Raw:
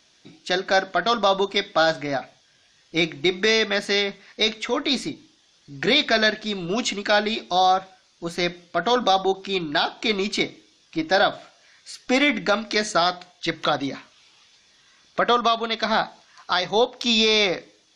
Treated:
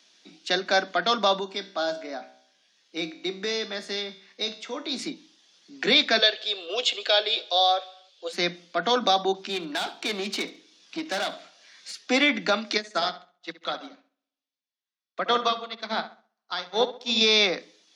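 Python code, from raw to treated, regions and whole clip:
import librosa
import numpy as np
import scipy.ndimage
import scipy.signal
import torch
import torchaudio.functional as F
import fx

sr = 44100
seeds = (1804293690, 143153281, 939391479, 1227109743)

y = fx.chain(x, sr, fx.dynamic_eq(hz=2300.0, q=1.2, threshold_db=-36.0, ratio=4.0, max_db=-6),
    fx.comb_fb(f0_hz=64.0, decay_s=0.64, harmonics='all', damping=0.0, mix_pct=60), at=(1.39, 4.99))
y = fx.chain(y, sr, fx.cabinet(low_hz=470.0, low_slope=24, high_hz=8300.0, hz=(490.0, 930.0, 1400.0, 2000.0, 3300.0, 6100.0), db=(9, -9, -5, -6, 8, -7)),
    fx.echo_feedback(ms=77, feedback_pct=58, wet_db=-22.5), at=(6.18, 8.33))
y = fx.chain(y, sr, fx.tube_stage(drive_db=21.0, bias=0.55),
    fx.echo_feedback(ms=70, feedback_pct=24, wet_db=-18.5),
    fx.band_squash(depth_pct=40), at=(9.48, 11.92))
y = fx.chain(y, sr, fx.echo_filtered(ms=67, feedback_pct=65, hz=3900.0, wet_db=-6.0),
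    fx.upward_expand(threshold_db=-41.0, expansion=2.5), at=(12.77, 17.21))
y = scipy.signal.sosfilt(scipy.signal.butter(16, 170.0, 'highpass', fs=sr, output='sos'), y)
y = fx.peak_eq(y, sr, hz=3800.0, db=4.0, octaves=1.7)
y = F.gain(torch.from_numpy(y), -3.5).numpy()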